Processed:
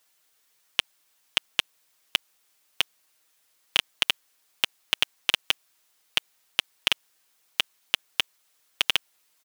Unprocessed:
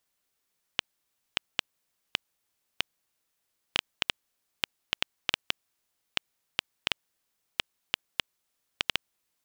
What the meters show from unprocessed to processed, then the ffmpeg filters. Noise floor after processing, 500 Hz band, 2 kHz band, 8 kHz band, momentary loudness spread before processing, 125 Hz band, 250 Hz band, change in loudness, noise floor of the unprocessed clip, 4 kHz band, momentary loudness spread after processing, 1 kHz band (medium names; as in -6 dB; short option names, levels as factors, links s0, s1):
-68 dBFS, +3.0 dB, +6.0 dB, +8.5 dB, 5 LU, -0.5 dB, +1.0 dB, +6.5 dB, -80 dBFS, +7.5 dB, 5 LU, +4.0 dB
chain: -filter_complex "[0:a]asplit=2[s0][s1];[s1]highpass=f=720:p=1,volume=3.98,asoftclip=type=tanh:threshold=0.562[s2];[s0][s2]amix=inputs=2:normalize=0,lowpass=f=1100:p=1,volume=0.501,crystalizer=i=6:c=0,aecho=1:1:6.4:0.55,volume=1.33"